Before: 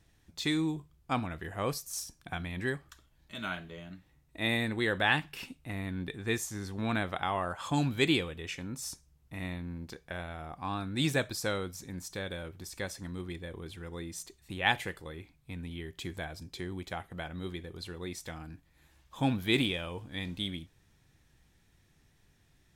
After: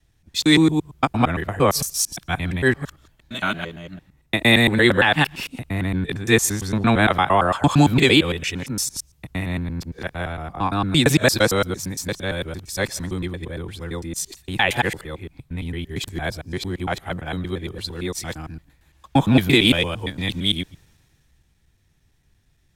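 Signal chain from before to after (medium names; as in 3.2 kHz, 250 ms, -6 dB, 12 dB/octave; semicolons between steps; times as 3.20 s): time reversed locally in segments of 114 ms; loudness maximiser +18 dB; three bands expanded up and down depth 40%; trim -3.5 dB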